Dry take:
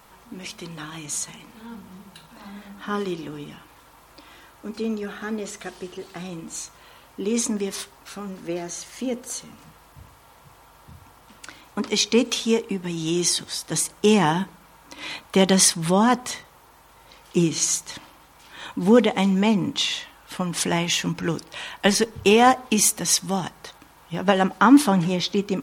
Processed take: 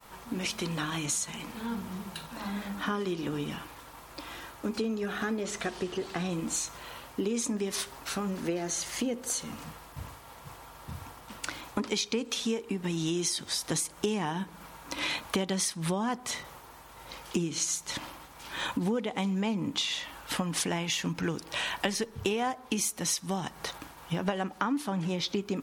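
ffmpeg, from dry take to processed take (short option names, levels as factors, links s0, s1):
-filter_complex "[0:a]asettb=1/sr,asplit=3[s0][s1][s2];[s0]atrim=end=5.434[s3];[s1]atrim=start=5.43:end=6.3,asetpts=PTS-STARTPTS,afade=t=in:d=0.004:c=qsin,afade=t=out:st=0.866:d=0.004:c=qsin,highshelf=f=9200:g=-9.5[s4];[s2]atrim=start=6.296[s5];[s3][s4]acrossfade=d=0.004:c1=hsin:c2=qsin[s6];[s6][s5]acrossfade=d=0.004:c1=qsin:c2=hsin,agate=range=0.0224:threshold=0.00398:ratio=3:detection=peak,acompressor=threshold=0.0224:ratio=8,volume=1.78"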